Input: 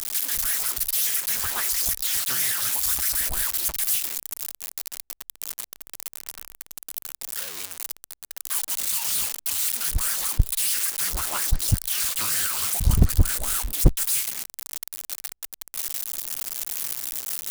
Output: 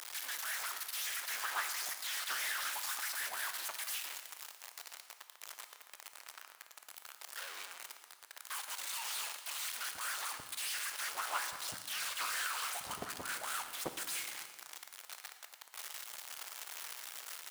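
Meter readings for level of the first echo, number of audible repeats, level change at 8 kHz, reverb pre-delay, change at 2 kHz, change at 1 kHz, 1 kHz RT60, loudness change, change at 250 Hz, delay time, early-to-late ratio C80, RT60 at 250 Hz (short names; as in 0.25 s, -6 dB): -17.5 dB, 1, -15.5 dB, 18 ms, -5.0 dB, -4.0 dB, 1.5 s, -15.5 dB, -22.5 dB, 0.113 s, 10.0 dB, 1.8 s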